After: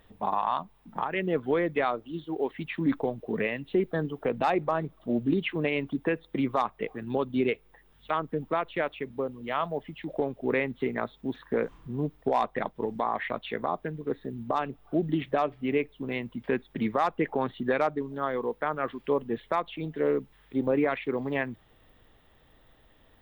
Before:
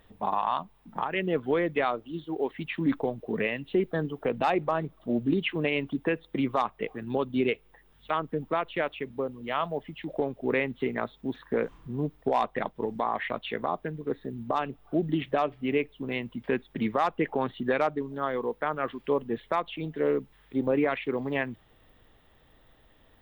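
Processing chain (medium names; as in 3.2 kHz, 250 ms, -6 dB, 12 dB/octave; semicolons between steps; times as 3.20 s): dynamic bell 2.9 kHz, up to -4 dB, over -50 dBFS, Q 3.5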